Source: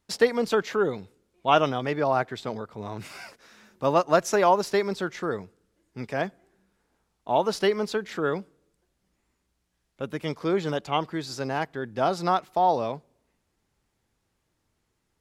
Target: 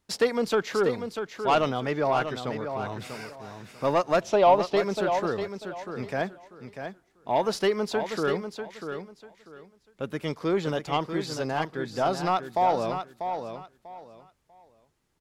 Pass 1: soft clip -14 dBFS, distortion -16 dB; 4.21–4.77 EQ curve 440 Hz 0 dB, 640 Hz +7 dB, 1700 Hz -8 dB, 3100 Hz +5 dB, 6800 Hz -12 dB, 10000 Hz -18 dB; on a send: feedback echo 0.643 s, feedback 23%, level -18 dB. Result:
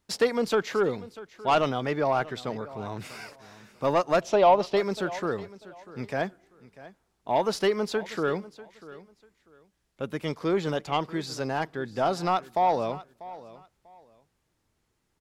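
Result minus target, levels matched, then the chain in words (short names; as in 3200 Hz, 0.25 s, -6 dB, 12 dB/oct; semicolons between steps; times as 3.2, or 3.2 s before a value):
echo-to-direct -10 dB
soft clip -14 dBFS, distortion -16 dB; 4.21–4.77 EQ curve 440 Hz 0 dB, 640 Hz +7 dB, 1700 Hz -8 dB, 3100 Hz +5 dB, 6800 Hz -12 dB, 10000 Hz -18 dB; on a send: feedback echo 0.643 s, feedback 23%, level -8 dB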